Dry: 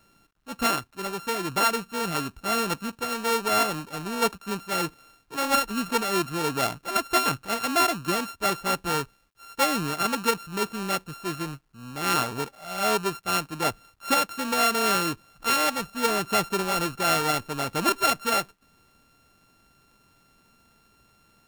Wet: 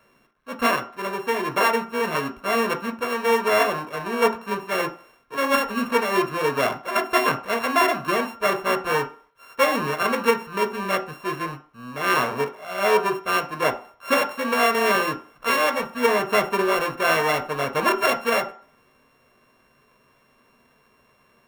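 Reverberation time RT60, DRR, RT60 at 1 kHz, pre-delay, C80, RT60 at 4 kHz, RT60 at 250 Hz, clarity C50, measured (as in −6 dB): 0.45 s, 6.0 dB, 0.45 s, 3 ms, 19.5 dB, 0.45 s, 0.35 s, 15.0 dB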